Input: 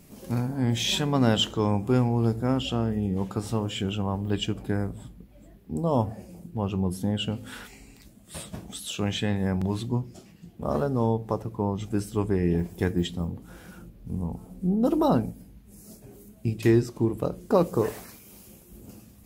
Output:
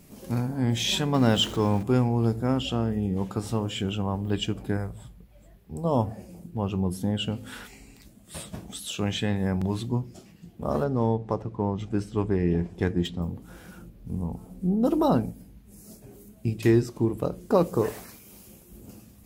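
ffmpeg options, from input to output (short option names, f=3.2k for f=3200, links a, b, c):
-filter_complex "[0:a]asettb=1/sr,asplit=3[a][b][c];[a]atrim=end=1.144[d];[b]atrim=start=1.14:end=1.83,asetpts=PTS-STARTPTS,afade=t=in:d=0.004:c=qsin,afade=t=out:st=0.686:d=0.004:c=qsin,aeval=exprs='val(0)+0.5*0.0158*sgn(val(0))':c=same[e];[c]atrim=start=1.826[f];[d][e]acrossfade=d=0.004:c1=hsin:c2=qsin[g];[g][f]acrossfade=d=0.004:c1=qsin:c2=hsin,asettb=1/sr,asplit=3[h][i][j];[h]atrim=end=4.774[k];[i]atrim=start=4.77:end=5.85,asetpts=PTS-STARTPTS,afade=t=in:d=0.004:c=qsin,afade=t=out:st=1.076:d=0.004:c=qsin,equalizer=f=270:w=1.5:g=-11[l];[j]atrim=start=5.846[m];[k][l]acrossfade=d=0.004:c1=hsin:c2=qsin[n];[n][m]acrossfade=d=0.004:c1=qsin:c2=hsin,asettb=1/sr,asplit=3[o][p][q];[o]atrim=end=10.844[r];[p]atrim=start=10.84:end=13.22,asetpts=PTS-STARTPTS,afade=t=in:d=0.004:c=qsin,afade=t=out:st=2.376:d=0.004:c=qsin,adynamicsmooth=sensitivity=7.5:basefreq=5k[s];[q]atrim=start=13.216[t];[r][s]acrossfade=d=0.004:c1=hsin:c2=qsin[u];[u][t]acrossfade=d=0.004:c1=qsin:c2=hsin"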